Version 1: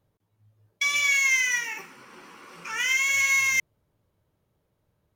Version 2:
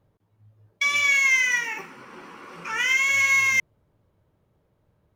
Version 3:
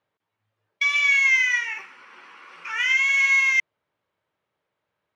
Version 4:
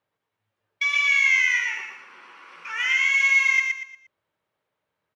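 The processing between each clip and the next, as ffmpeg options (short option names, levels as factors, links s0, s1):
-af "highshelf=f=3200:g=-10.5,volume=2"
-af "bandpass=f=2400:t=q:w=0.88:csg=0,volume=1.19"
-af "aecho=1:1:117|234|351|468:0.631|0.208|0.0687|0.0227,volume=0.794"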